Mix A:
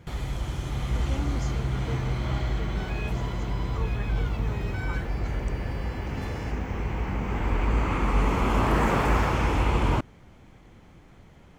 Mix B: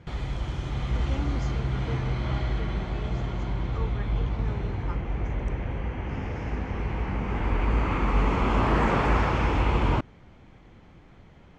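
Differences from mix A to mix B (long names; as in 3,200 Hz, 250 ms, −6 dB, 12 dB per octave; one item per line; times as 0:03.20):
second sound: muted
master: add low-pass filter 4,900 Hz 12 dB per octave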